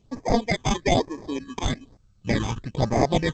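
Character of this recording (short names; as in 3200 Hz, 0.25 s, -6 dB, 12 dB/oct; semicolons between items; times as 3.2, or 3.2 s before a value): aliases and images of a low sample rate 1400 Hz, jitter 0%; phasing stages 8, 1.1 Hz, lowest notch 570–3400 Hz; G.722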